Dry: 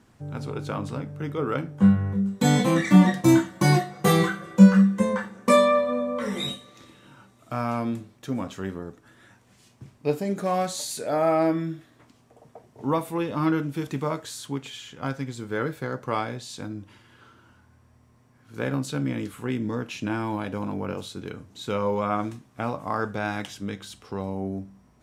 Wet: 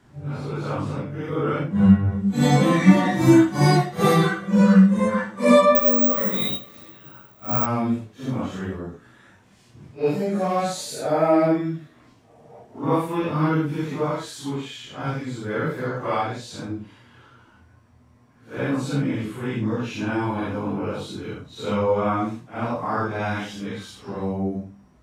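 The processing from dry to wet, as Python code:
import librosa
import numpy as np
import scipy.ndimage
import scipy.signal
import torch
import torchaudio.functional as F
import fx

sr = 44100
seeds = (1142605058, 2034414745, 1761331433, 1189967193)

y = fx.phase_scramble(x, sr, seeds[0], window_ms=200)
y = fx.high_shelf(y, sr, hz=6400.0, db=-8.0)
y = fx.resample_bad(y, sr, factor=2, down='none', up='zero_stuff', at=(5.75, 7.66))
y = F.gain(torch.from_numpy(y), 3.5).numpy()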